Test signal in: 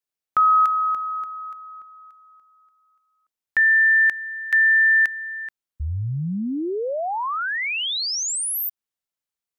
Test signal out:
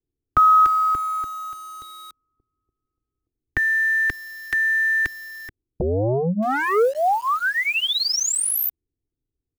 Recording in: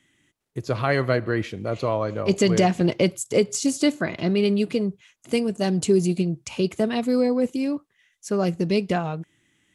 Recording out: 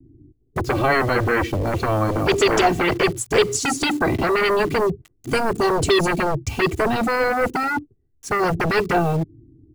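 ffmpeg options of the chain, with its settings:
-filter_complex "[0:a]aecho=1:1:2.6:0.97,acrossover=split=300[a][b];[a]acompressor=threshold=-28dB:ratio=4:attack=9.7:release=776:knee=2.83:detection=peak[c];[c][b]amix=inputs=2:normalize=0,acrossover=split=300[d][e];[d]aeval=exprs='0.126*sin(PI/2*8.91*val(0)/0.126)':c=same[f];[e]acrusher=bits=6:mix=0:aa=0.000001[g];[f][g]amix=inputs=2:normalize=0"

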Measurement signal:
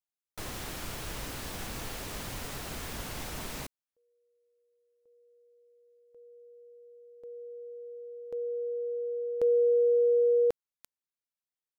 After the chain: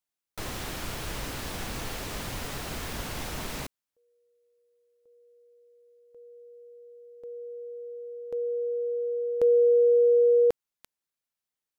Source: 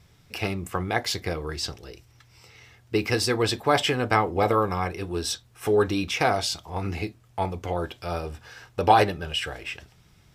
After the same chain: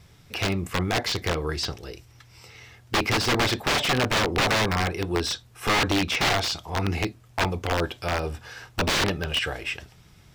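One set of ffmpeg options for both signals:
-filter_complex "[0:a]aeval=exprs='(mod(9.44*val(0)+1,2)-1)/9.44':c=same,acrossover=split=5900[a][b];[b]acompressor=threshold=-44dB:ratio=4:attack=1:release=60[c];[a][c]amix=inputs=2:normalize=0,volume=4dB"

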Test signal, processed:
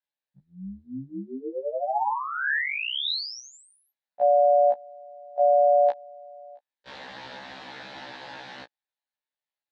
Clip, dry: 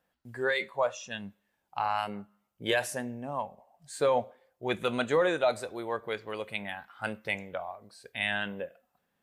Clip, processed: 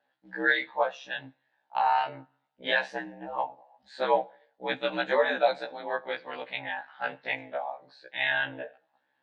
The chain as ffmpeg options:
-af "aeval=exprs='val(0)*sin(2*PI*70*n/s)':c=same,highpass=240,equalizer=f=390:t=q:w=4:g=-7,equalizer=f=560:t=q:w=4:g=4,equalizer=f=850:t=q:w=4:g=9,equalizer=f=1.2k:t=q:w=4:g=-4,equalizer=f=1.7k:t=q:w=4:g=8,equalizer=f=3.9k:t=q:w=4:g=6,lowpass=f=4.4k:w=0.5412,lowpass=f=4.4k:w=1.3066,afftfilt=real='re*1.73*eq(mod(b,3),0)':imag='im*1.73*eq(mod(b,3),0)':win_size=2048:overlap=0.75,volume=4.5dB"

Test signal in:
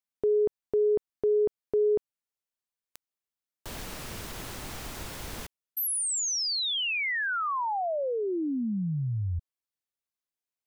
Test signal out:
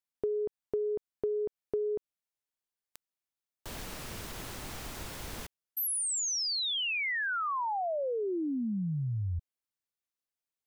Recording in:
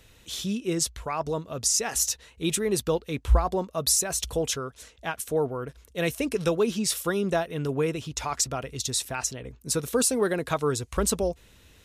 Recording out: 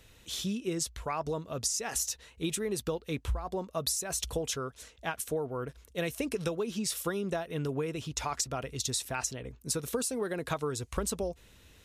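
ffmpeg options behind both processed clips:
-af "acompressor=threshold=-28dB:ratio=10:attack=56:release=244:knee=1:detection=rms,volume=-2.5dB"

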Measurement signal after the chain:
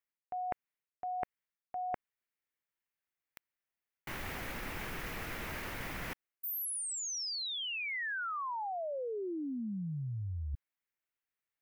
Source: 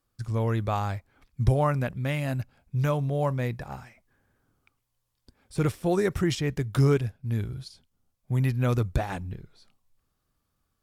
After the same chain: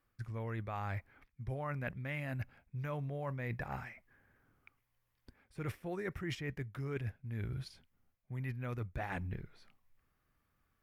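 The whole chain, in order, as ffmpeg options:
-af "equalizer=f=2k:t=o:w=1:g=9,equalizer=f=4k:t=o:w=1:g=-5,equalizer=f=8k:t=o:w=1:g=-8,areverse,acompressor=threshold=-34dB:ratio=16,areverse,volume=-2dB"

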